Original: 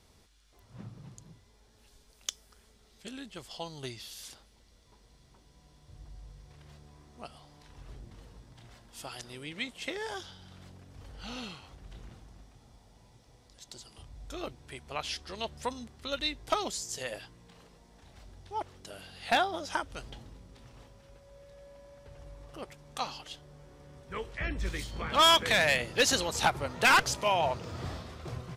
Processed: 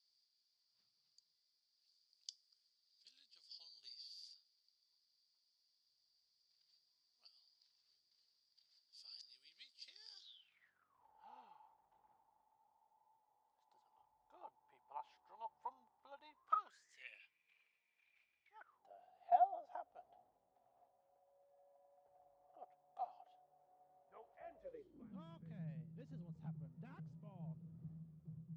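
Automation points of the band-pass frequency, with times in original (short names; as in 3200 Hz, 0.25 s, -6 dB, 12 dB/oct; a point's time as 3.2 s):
band-pass, Q 18
10.17 s 4700 Hz
11.05 s 870 Hz
16.24 s 870 Hz
17.08 s 2400 Hz
18.45 s 2400 Hz
18.89 s 720 Hz
24.54 s 720 Hz
25.25 s 160 Hz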